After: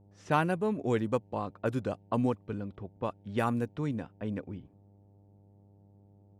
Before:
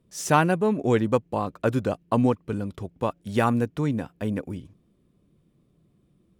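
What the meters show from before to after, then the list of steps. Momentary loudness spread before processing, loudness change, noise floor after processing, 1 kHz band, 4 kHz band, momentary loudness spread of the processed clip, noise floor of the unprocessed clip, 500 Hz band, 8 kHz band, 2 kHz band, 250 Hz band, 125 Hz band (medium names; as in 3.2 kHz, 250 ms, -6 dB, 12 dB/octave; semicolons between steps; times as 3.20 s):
10 LU, -7.5 dB, -60 dBFS, -7.5 dB, -9.0 dB, 10 LU, -66 dBFS, -7.5 dB, under -15 dB, -7.5 dB, -7.5 dB, -7.5 dB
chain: mains buzz 100 Hz, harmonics 9, -52 dBFS -7 dB/octave; level-controlled noise filter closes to 1.2 kHz, open at -18.5 dBFS; trim -7.5 dB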